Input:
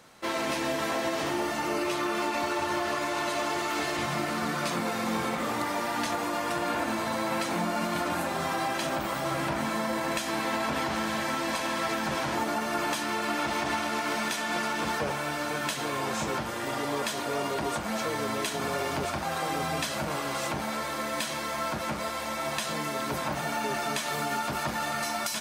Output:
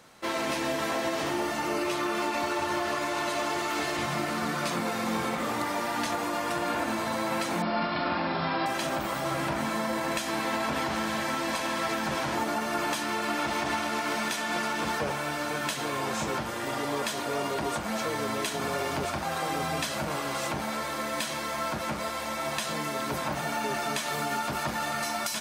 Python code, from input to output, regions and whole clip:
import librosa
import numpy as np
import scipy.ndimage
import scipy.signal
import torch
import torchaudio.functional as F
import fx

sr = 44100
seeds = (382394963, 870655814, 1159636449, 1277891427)

y = fx.chain(x, sr, fx.brickwall_lowpass(high_hz=5500.0),
    fx.room_flutter(wall_m=7.2, rt60_s=0.43), at=(7.62, 8.66))